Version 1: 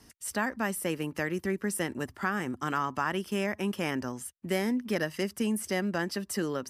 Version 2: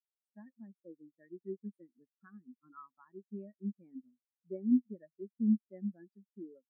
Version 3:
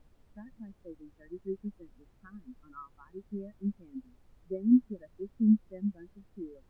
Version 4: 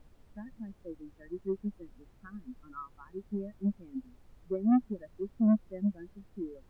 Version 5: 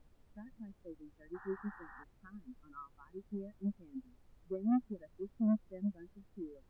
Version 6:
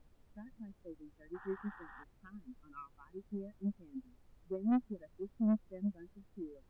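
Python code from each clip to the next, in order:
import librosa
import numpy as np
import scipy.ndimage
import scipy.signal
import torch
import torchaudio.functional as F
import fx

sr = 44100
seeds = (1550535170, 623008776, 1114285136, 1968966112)

y1 = fx.spectral_expand(x, sr, expansion=4.0)
y1 = F.gain(torch.from_numpy(y1), -3.5).numpy()
y2 = fx.dmg_noise_colour(y1, sr, seeds[0], colour='brown', level_db=-65.0)
y2 = F.gain(torch.from_numpy(y2), 5.0).numpy()
y3 = 10.0 ** (-23.5 / 20.0) * np.tanh(y2 / 10.0 ** (-23.5 / 20.0))
y3 = F.gain(torch.from_numpy(y3), 3.5).numpy()
y4 = fx.spec_paint(y3, sr, seeds[1], shape='noise', start_s=1.34, length_s=0.7, low_hz=740.0, high_hz=1900.0, level_db=-48.0)
y4 = F.gain(torch.from_numpy(y4), -6.5).numpy()
y5 = fx.tracing_dist(y4, sr, depth_ms=0.077)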